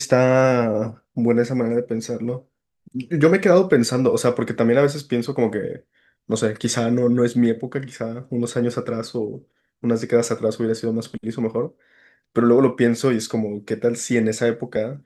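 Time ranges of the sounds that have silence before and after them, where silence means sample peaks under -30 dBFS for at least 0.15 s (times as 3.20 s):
1.17–2.38 s
2.95–5.76 s
6.30–9.38 s
9.84–11.67 s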